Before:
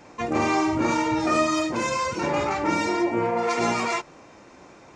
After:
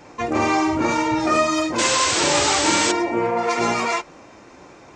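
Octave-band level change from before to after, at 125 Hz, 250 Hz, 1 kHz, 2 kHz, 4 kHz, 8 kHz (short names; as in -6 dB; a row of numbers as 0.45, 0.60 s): +1.0, +2.0, +4.0, +5.5, +11.5, +13.5 dB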